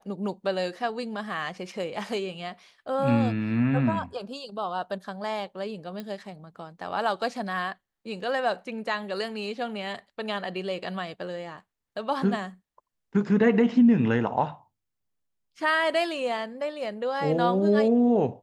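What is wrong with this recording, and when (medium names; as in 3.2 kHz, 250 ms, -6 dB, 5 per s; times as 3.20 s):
6.00 s: pop -23 dBFS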